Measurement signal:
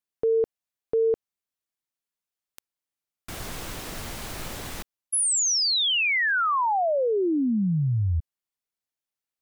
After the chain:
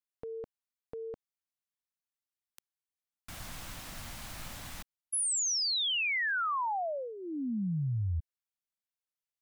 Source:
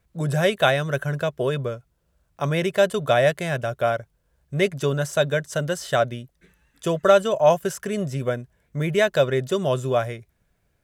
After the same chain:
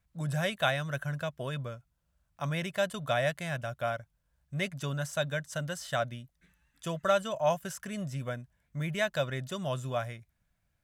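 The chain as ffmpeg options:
ffmpeg -i in.wav -af "equalizer=frequency=410:width=2.1:gain=-13.5,volume=-7.5dB" out.wav

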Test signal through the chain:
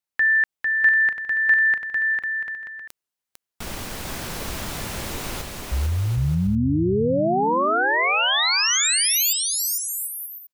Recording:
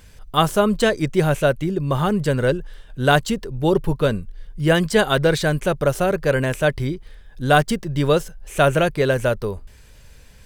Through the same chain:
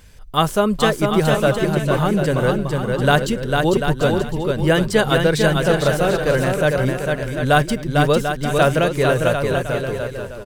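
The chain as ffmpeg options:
ffmpeg -i in.wav -af "aecho=1:1:450|742.5|932.6|1056|1137:0.631|0.398|0.251|0.158|0.1" out.wav

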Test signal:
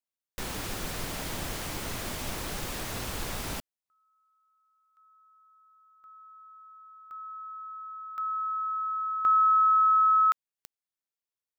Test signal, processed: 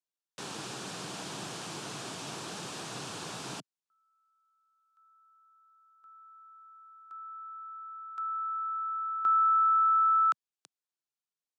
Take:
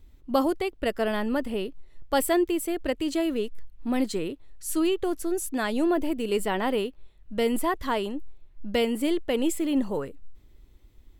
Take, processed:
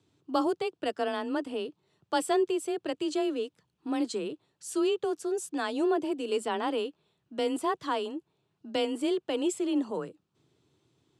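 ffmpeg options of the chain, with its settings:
ffmpeg -i in.wav -af "highpass=frequency=110:width=0.5412,highpass=frequency=110:width=1.3066,equalizer=frequency=210:width_type=q:width=4:gain=-6,equalizer=frequency=530:width_type=q:width=4:gain=-5,equalizer=frequency=2000:width_type=q:width=4:gain=-9,lowpass=frequency=8800:width=0.5412,lowpass=frequency=8800:width=1.3066,afreqshift=25,volume=-2dB" out.wav

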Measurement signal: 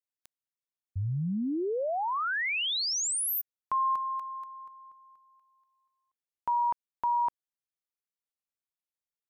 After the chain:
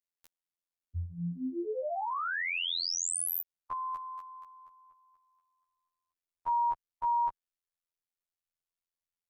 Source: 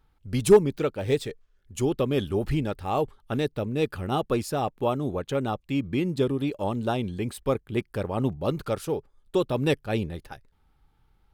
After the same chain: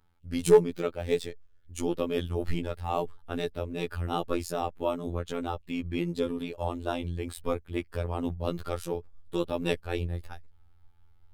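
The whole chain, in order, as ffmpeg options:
ffmpeg -i in.wav -af "asubboost=boost=5.5:cutoff=70,afftfilt=real='hypot(re,im)*cos(PI*b)':imag='0':win_size=2048:overlap=0.75" out.wav

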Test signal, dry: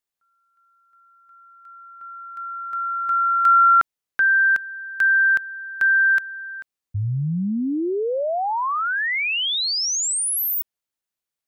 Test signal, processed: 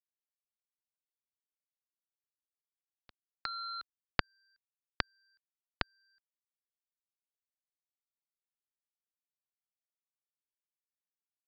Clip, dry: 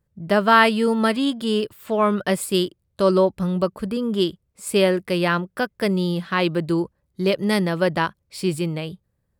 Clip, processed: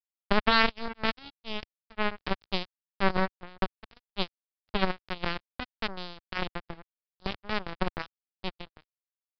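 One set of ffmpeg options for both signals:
ffmpeg -i in.wav -af "lowshelf=frequency=340:gain=5,acompressor=threshold=-30dB:ratio=2:attack=4.5:release=56:knee=1:detection=peak,acrusher=bits=2:mix=0:aa=0.5,aresample=11025,aresample=44100,lowshelf=frequency=110:gain=11.5,volume=5dB" out.wav

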